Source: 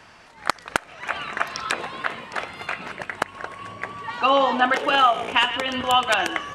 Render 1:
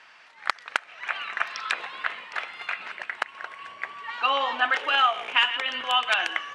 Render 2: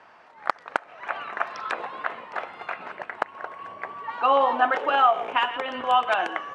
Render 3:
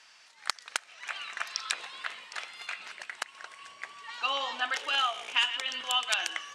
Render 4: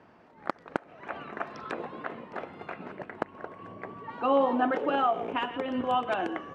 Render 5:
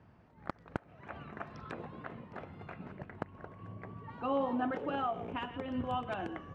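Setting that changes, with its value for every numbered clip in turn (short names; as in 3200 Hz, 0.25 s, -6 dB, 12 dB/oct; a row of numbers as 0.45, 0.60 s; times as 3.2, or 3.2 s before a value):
band-pass, frequency: 2300, 830, 5800, 300, 110 Hz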